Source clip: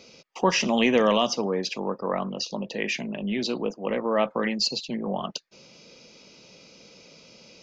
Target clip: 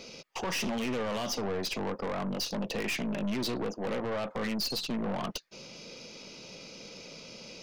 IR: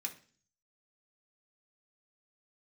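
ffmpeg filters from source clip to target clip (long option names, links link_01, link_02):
-af "alimiter=limit=-15.5dB:level=0:latency=1:release=33,acompressor=threshold=-27dB:ratio=5,aeval=exprs='(tanh(56.2*val(0)+0.4)-tanh(0.4))/56.2':channel_layout=same,volume=5.5dB"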